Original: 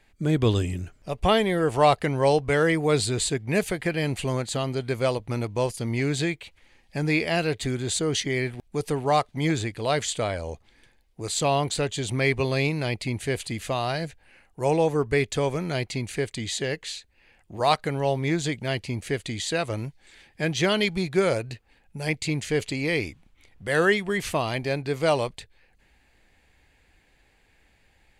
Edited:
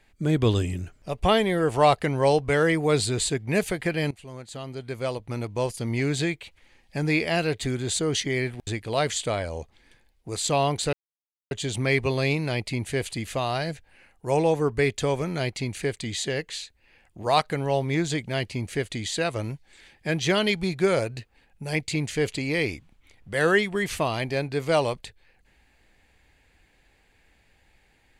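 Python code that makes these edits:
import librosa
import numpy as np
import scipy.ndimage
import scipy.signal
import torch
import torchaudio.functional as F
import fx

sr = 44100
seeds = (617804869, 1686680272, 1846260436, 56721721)

y = fx.edit(x, sr, fx.fade_in_from(start_s=4.11, length_s=1.81, floor_db=-20.0),
    fx.cut(start_s=8.67, length_s=0.92),
    fx.insert_silence(at_s=11.85, length_s=0.58), tone=tone)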